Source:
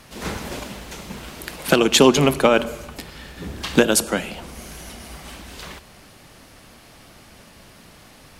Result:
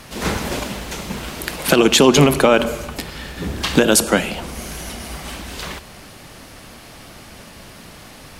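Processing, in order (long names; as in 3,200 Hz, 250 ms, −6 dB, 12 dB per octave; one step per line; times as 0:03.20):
boost into a limiter +8 dB
level −1 dB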